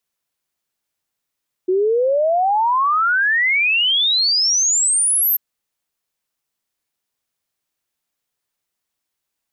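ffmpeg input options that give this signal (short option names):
-f lavfi -i "aevalsrc='0.211*clip(min(t,3.69-t)/0.01,0,1)*sin(2*PI*360*3.69/log(13000/360)*(exp(log(13000/360)*t/3.69)-1))':d=3.69:s=44100"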